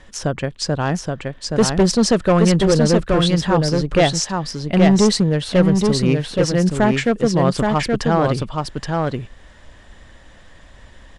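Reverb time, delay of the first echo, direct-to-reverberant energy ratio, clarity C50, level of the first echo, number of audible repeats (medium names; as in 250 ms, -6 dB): no reverb, 824 ms, no reverb, no reverb, -3.5 dB, 1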